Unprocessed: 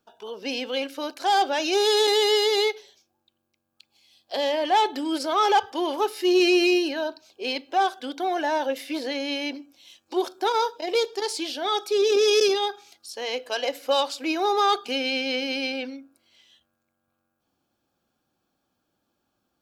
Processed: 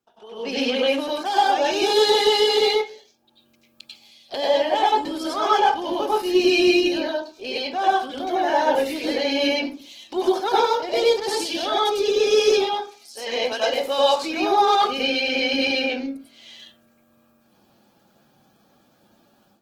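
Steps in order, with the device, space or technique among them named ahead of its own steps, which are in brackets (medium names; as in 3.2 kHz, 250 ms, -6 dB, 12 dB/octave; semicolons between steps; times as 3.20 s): far-field microphone of a smart speaker (reverberation RT60 0.35 s, pre-delay 90 ms, DRR -5.5 dB; high-pass 110 Hz 24 dB/octave; level rider gain up to 16.5 dB; trim -6.5 dB; Opus 16 kbps 48 kHz)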